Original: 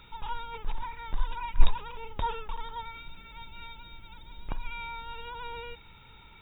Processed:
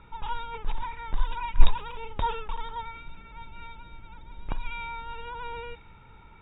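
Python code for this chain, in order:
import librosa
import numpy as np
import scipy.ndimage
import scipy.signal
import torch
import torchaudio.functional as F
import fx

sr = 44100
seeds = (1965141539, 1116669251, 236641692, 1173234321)

y = fx.env_lowpass(x, sr, base_hz=1500.0, full_db=-23.0)
y = y * 10.0 ** (3.0 / 20.0)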